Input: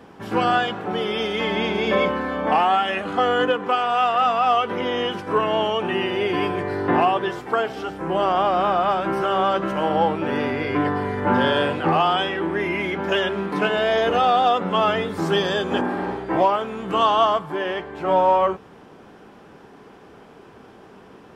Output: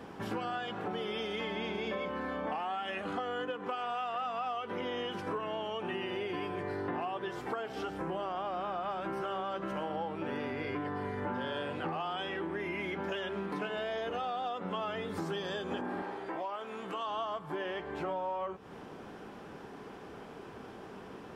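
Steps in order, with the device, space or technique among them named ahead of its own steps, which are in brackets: serial compression, peaks first (compression 5:1, threshold -29 dBFS, peak gain reduction 14.5 dB; compression 1.5:1, threshold -38 dBFS, peak gain reduction 5 dB); 16.02–17.07 s: high-pass 460 Hz 6 dB/octave; trim -1.5 dB

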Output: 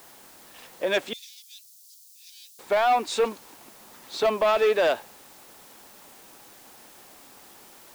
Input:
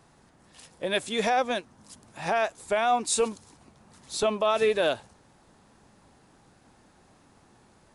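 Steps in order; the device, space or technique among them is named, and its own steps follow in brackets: tape answering machine (band-pass 330–3200 Hz; saturation -22 dBFS, distortion -14 dB; wow and flutter 20 cents; white noise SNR 24 dB); 1.13–2.59 s: inverse Chebyshev high-pass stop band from 1.4 kHz, stop band 60 dB; trim +6.5 dB

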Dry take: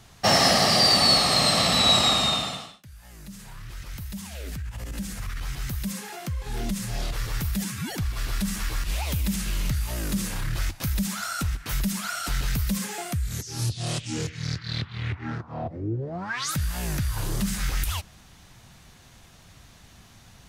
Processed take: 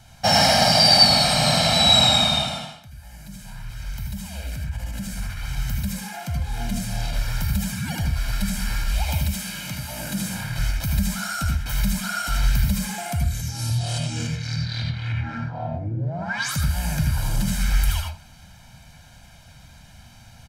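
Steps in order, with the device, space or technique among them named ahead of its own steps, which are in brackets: 9.23–10.57 s: high-pass 280 Hz -> 89 Hz 12 dB/octave; microphone above a desk (comb 1.3 ms, depth 83%; reverberation RT60 0.35 s, pre-delay 74 ms, DRR 0.5 dB); trim -2 dB

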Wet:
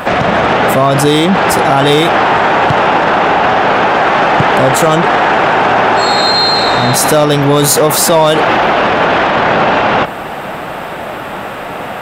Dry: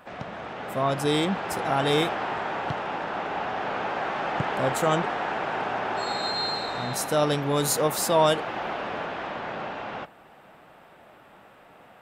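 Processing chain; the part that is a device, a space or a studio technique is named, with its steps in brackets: loud club master (compression 2.5:1, threshold -27 dBFS, peak gain reduction 8 dB; hard clipper -21.5 dBFS, distortion -24 dB; loudness maximiser +31 dB); trim -1 dB

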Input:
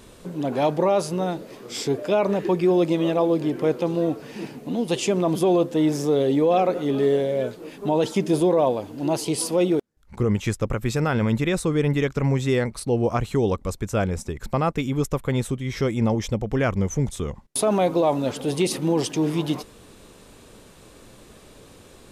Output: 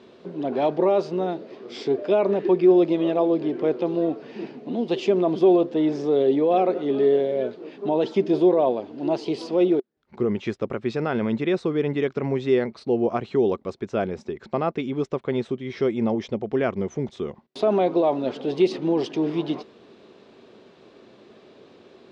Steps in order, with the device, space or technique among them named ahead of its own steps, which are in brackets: kitchen radio (cabinet simulation 170–4600 Hz, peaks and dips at 230 Hz +4 dB, 380 Hz +9 dB, 670 Hz +5 dB); trim -4 dB

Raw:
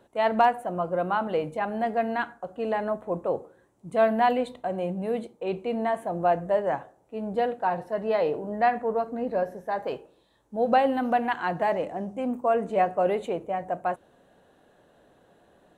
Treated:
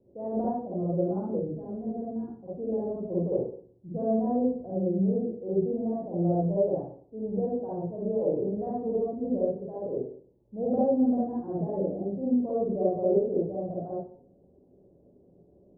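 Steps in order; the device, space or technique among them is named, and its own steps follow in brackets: next room (low-pass 470 Hz 24 dB/octave; reverberation RT60 0.50 s, pre-delay 43 ms, DRR -7 dB); 1.39–2.46 s: peaking EQ 730 Hz -6.5 dB 2.4 oct; trim -4 dB

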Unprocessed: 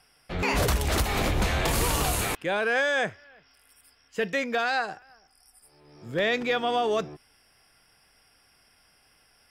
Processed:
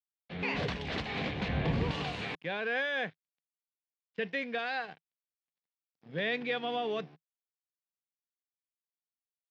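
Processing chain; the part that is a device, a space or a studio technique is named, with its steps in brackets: blown loudspeaker (crossover distortion -43.5 dBFS; cabinet simulation 150–3900 Hz, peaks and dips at 160 Hz +5 dB, 350 Hz -7 dB, 610 Hz -6 dB, 910 Hz -5 dB, 1.3 kHz -9 dB); 1.48–1.91 s: tilt EQ -3 dB/octave; trim -4 dB

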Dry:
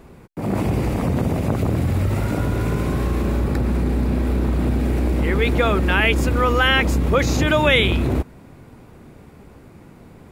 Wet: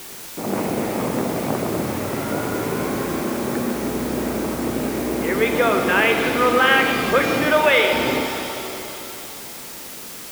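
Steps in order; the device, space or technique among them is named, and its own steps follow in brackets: 7.50–7.93 s: inverse Chebyshev high-pass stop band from 190 Hz, stop band 40 dB; wax cylinder (band-pass 260–2700 Hz; wow and flutter 20 cents; white noise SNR 14 dB); pitch-shifted reverb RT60 3.1 s, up +7 st, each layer -8 dB, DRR 3 dB; trim +1 dB

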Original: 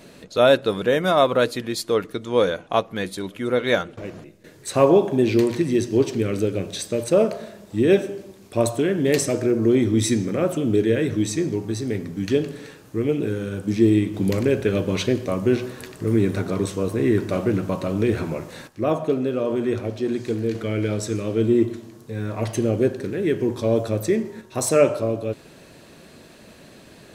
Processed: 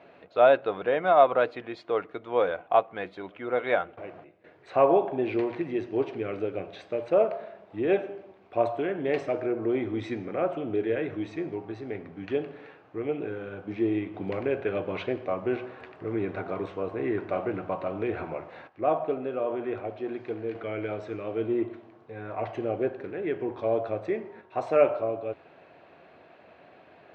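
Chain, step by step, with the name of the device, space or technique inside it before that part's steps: bass cabinet (cabinet simulation 73–2200 Hz, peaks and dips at 83 Hz +9 dB, 220 Hz -6 dB, 730 Hz +9 dB, 1.8 kHz -5 dB); RIAA curve recording; trim -4 dB

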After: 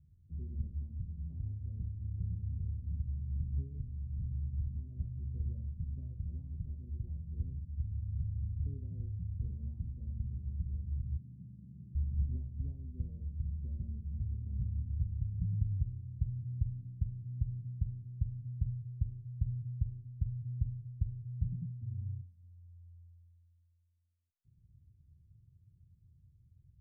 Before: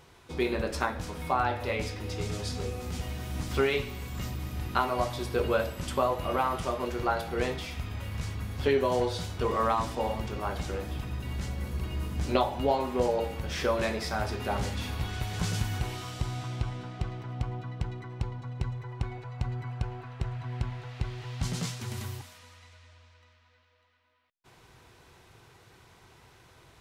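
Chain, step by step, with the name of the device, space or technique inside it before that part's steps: 11.17–11.95 s: high-pass 150 Hz 24 dB/octave; the neighbour's flat through the wall (low-pass 160 Hz 24 dB/octave; peaking EQ 82 Hz +6 dB 0.47 oct); band-stop 760 Hz, Q 14; trim -3.5 dB

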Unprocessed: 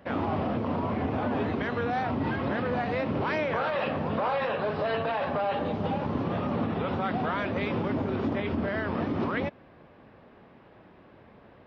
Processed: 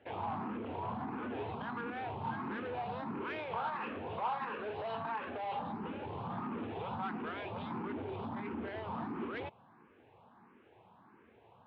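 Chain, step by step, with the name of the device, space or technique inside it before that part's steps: barber-pole phaser into a guitar amplifier (barber-pole phaser +1.5 Hz; saturation -28 dBFS, distortion -15 dB; cabinet simulation 110–3500 Hz, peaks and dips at 160 Hz -6 dB, 280 Hz -4 dB, 580 Hz -9 dB, 910 Hz +6 dB, 1.9 kHz -5 dB); trim -3.5 dB

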